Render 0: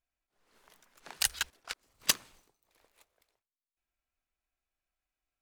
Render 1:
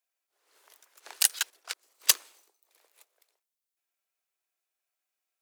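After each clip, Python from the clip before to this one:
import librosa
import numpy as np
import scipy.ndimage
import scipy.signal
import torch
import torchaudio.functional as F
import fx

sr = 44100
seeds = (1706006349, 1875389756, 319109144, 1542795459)

y = scipy.signal.sosfilt(scipy.signal.butter(6, 340.0, 'highpass', fs=sr, output='sos'), x)
y = fx.high_shelf(y, sr, hz=4700.0, db=8.5)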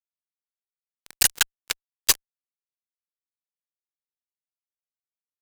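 y = fx.fuzz(x, sr, gain_db=25.0, gate_db=-33.0)
y = F.gain(torch.from_numpy(y), 3.0).numpy()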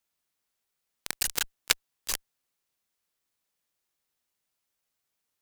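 y = fx.over_compress(x, sr, threshold_db=-29.0, ratio=-1.0)
y = F.gain(torch.from_numpy(y), 3.5).numpy()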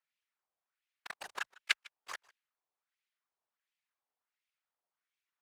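y = fx.filter_lfo_bandpass(x, sr, shape='sine', hz=1.4, low_hz=750.0, high_hz=2500.0, q=1.7)
y = y + 10.0 ** (-24.0 / 20.0) * np.pad(y, (int(152 * sr / 1000.0), 0))[:len(y)]
y = fx.whisperise(y, sr, seeds[0])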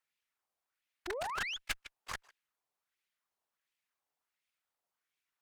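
y = fx.spec_paint(x, sr, seeds[1], shape='rise', start_s=1.07, length_s=0.5, low_hz=330.0, high_hz=3600.0, level_db=-41.0)
y = fx.tube_stage(y, sr, drive_db=36.0, bias=0.75)
y = F.gain(torch.from_numpy(y), 6.5).numpy()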